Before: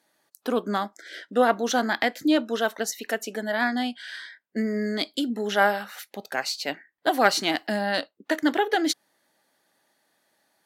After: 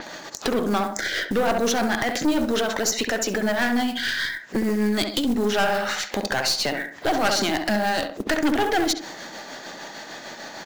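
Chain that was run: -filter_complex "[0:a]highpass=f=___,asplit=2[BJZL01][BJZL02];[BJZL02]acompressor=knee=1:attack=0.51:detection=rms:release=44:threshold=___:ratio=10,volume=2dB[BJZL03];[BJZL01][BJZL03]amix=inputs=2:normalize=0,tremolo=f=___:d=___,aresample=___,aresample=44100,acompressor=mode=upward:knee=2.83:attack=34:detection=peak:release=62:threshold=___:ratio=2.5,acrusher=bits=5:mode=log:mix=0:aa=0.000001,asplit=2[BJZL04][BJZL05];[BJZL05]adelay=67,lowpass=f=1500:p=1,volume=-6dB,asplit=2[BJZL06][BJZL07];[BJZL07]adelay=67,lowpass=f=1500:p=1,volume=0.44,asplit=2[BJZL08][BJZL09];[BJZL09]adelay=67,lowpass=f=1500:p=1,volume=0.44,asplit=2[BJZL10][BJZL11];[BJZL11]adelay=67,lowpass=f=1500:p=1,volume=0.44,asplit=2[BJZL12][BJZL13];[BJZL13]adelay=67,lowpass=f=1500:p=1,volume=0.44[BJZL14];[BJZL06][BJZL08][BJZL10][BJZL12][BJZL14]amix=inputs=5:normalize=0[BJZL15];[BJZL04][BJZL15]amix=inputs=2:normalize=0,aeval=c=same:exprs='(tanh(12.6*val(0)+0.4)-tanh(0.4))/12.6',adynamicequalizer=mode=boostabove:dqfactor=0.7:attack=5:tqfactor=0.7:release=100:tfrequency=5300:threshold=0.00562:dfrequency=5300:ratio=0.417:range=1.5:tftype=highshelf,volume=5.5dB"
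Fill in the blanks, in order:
70, -31dB, 6.6, 0.62, 16000, -27dB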